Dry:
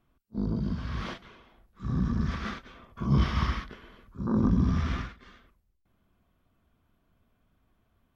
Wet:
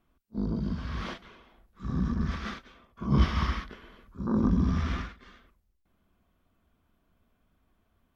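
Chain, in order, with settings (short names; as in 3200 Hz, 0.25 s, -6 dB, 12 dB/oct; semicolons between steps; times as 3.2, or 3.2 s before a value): bell 120 Hz -9 dB 0.31 oct; 2.14–3.26 three-band expander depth 40%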